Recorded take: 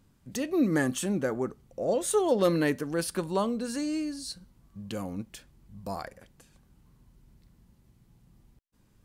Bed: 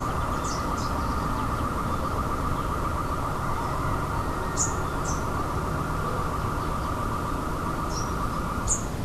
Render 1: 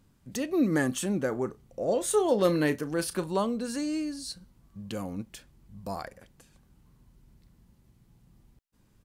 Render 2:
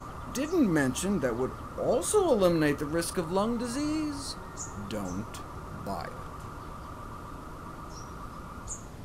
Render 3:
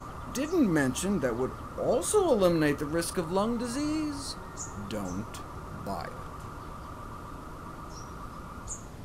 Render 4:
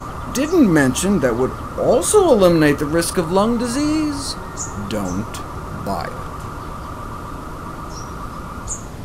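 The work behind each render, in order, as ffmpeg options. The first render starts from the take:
-filter_complex "[0:a]asplit=3[s0][s1][s2];[s0]afade=t=out:st=1.31:d=0.02[s3];[s1]asplit=2[s4][s5];[s5]adelay=33,volume=0.224[s6];[s4][s6]amix=inputs=2:normalize=0,afade=t=in:st=1.31:d=0.02,afade=t=out:st=3.26:d=0.02[s7];[s2]afade=t=in:st=3.26:d=0.02[s8];[s3][s7][s8]amix=inputs=3:normalize=0"
-filter_complex "[1:a]volume=0.211[s0];[0:a][s0]amix=inputs=2:normalize=0"
-af anull
-af "volume=3.98,alimiter=limit=0.891:level=0:latency=1"

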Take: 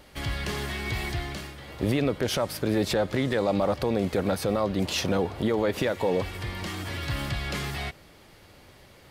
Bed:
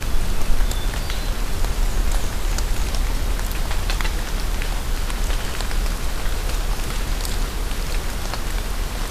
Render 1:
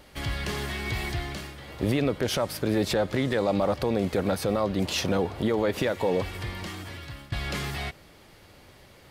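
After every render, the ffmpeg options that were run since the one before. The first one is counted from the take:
-filter_complex "[0:a]asplit=2[s0][s1];[s0]atrim=end=7.32,asetpts=PTS-STARTPTS,afade=t=out:st=6.42:d=0.9:silence=0.105925[s2];[s1]atrim=start=7.32,asetpts=PTS-STARTPTS,afade=t=in:d=0.004:c=hsin:silence=0.105925[s3];[s2][s3]concat=n=2:v=0:a=1"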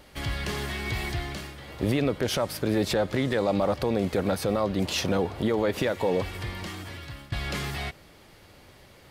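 -af anull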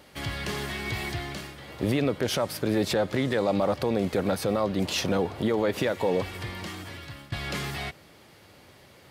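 -af "highpass=86"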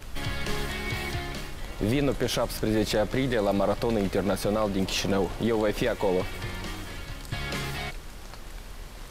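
-filter_complex "[1:a]volume=0.141[s0];[0:a][s0]amix=inputs=2:normalize=0"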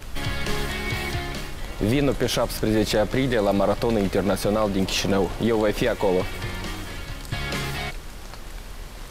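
-af "volume=1.58"

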